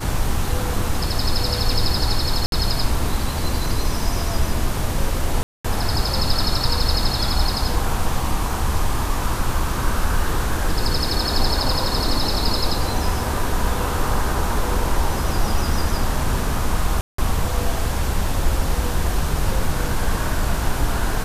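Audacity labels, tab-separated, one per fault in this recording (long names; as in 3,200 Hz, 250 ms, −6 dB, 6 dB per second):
2.460000	2.520000	drop-out 62 ms
5.430000	5.640000	drop-out 215 ms
17.010000	17.180000	drop-out 174 ms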